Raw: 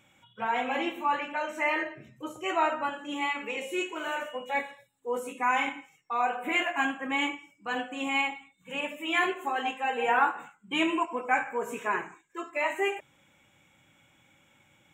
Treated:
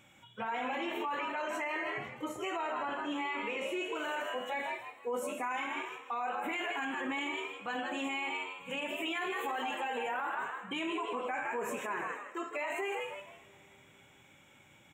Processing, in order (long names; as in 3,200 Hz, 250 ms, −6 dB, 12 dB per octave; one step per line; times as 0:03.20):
0:02.70–0:03.95: high-shelf EQ 5,100 Hz −10.5 dB
echo with shifted repeats 157 ms, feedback 31%, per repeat +95 Hz, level −10.5 dB
coupled-rooms reverb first 0.29 s, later 4 s, from −20 dB, DRR 17 dB
brickwall limiter −29.5 dBFS, peak gain reduction 17.5 dB
0:09.26–0:10.35: high-shelf EQ 12,000 Hz +10 dB
level +1.5 dB